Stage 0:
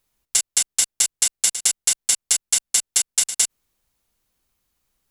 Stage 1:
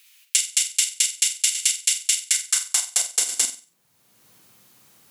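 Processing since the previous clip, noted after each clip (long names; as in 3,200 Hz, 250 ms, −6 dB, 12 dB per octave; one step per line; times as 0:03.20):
high-pass filter sweep 2,500 Hz → 110 Hz, 0:02.20–0:03.89
flutter between parallel walls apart 8.1 metres, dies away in 0.31 s
multiband upward and downward compressor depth 70%
level −3 dB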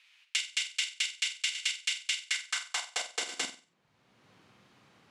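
low-pass filter 2,900 Hz 12 dB per octave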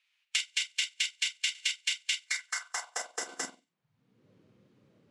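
noise reduction from a noise print of the clip's start 14 dB
level +1 dB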